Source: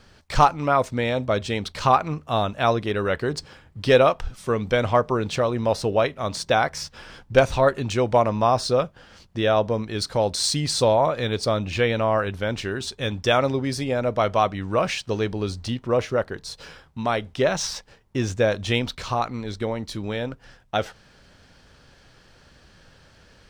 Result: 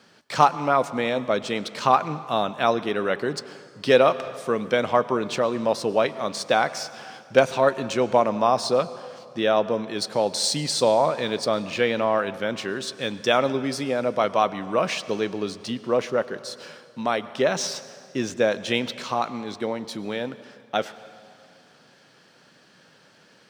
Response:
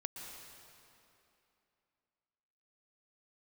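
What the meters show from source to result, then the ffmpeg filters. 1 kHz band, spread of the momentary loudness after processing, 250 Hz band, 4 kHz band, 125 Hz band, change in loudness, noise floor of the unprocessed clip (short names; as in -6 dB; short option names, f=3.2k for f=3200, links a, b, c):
-0.5 dB, 11 LU, -0.5 dB, -0.5 dB, -9.0 dB, -0.5 dB, -55 dBFS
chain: -filter_complex "[0:a]highpass=f=160:w=0.5412,highpass=f=160:w=1.3066,asplit=2[a][b];[1:a]atrim=start_sample=2205,asetrate=52920,aresample=44100[c];[b][c]afir=irnorm=-1:irlink=0,volume=-6.5dB[d];[a][d]amix=inputs=2:normalize=0,volume=-2.5dB"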